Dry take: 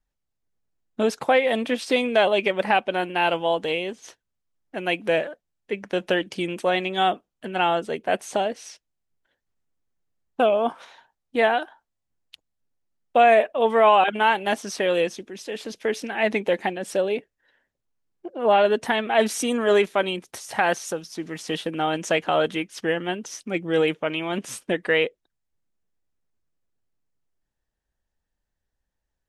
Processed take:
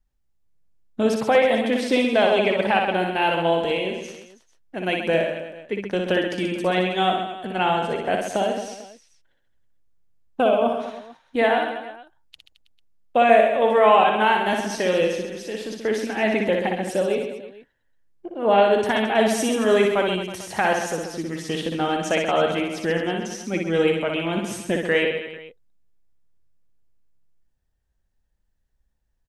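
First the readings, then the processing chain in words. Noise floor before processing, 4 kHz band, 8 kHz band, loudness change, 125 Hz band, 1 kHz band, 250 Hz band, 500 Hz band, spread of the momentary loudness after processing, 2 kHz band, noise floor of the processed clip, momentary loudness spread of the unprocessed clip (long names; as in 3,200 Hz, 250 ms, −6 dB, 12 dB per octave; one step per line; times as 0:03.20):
−81 dBFS, +1.0 dB, +0.5 dB, +1.5 dB, +5.0 dB, +1.0 dB, +4.0 dB, +2.0 dB, 13 LU, +0.5 dB, −70 dBFS, 13 LU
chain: low-shelf EQ 170 Hz +10.5 dB
reverse bouncing-ball delay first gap 60 ms, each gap 1.2×, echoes 5
level −1.5 dB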